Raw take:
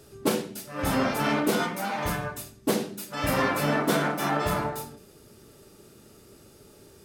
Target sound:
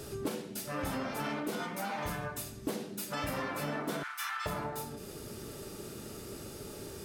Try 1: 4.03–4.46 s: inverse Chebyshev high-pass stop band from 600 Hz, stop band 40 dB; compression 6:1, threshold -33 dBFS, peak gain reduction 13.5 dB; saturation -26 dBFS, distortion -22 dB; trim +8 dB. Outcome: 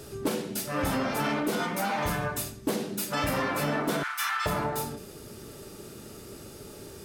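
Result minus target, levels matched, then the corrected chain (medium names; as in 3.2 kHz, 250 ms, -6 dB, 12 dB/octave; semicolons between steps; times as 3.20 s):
compression: peak gain reduction -8.5 dB
4.03–4.46 s: inverse Chebyshev high-pass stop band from 600 Hz, stop band 40 dB; compression 6:1, threshold -43 dBFS, peak gain reduction 21.5 dB; saturation -26 dBFS, distortion -36 dB; trim +8 dB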